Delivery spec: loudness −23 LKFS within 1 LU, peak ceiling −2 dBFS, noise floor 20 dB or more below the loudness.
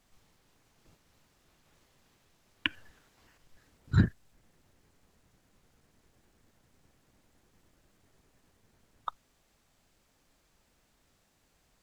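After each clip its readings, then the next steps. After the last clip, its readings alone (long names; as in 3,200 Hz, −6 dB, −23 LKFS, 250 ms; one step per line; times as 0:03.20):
integrated loudness −32.5 LKFS; sample peak −7.5 dBFS; target loudness −23.0 LKFS
→ level +9.5 dB
brickwall limiter −2 dBFS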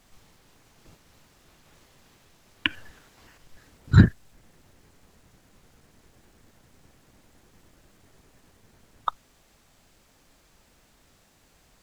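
integrated loudness −23.5 LKFS; sample peak −2.0 dBFS; background noise floor −62 dBFS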